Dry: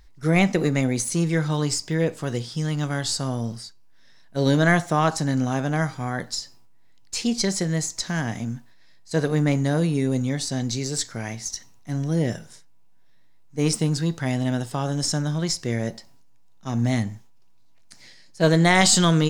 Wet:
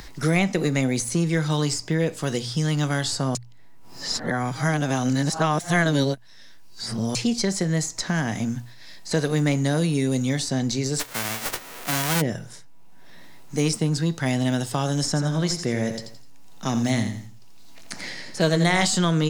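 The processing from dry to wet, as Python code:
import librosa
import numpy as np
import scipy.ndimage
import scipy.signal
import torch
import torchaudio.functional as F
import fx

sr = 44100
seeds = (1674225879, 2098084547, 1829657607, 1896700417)

y = fx.envelope_flatten(x, sr, power=0.1, at=(10.99, 12.2), fade=0.02)
y = fx.echo_feedback(y, sr, ms=84, feedback_pct=28, wet_db=-8.5, at=(15.07, 18.85))
y = fx.edit(y, sr, fx.reverse_span(start_s=3.35, length_s=3.8), tone=tone)
y = fx.hum_notches(y, sr, base_hz=60, count=2)
y = fx.band_squash(y, sr, depth_pct=70)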